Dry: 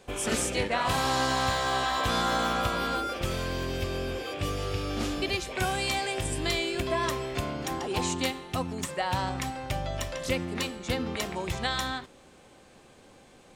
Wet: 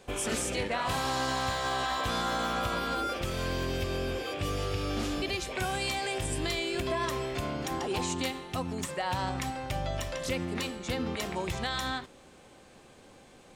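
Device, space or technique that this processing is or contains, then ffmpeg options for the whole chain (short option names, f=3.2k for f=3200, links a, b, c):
clipper into limiter: -af "asoftclip=type=hard:threshold=-18dB,alimiter=limit=-22dB:level=0:latency=1:release=71"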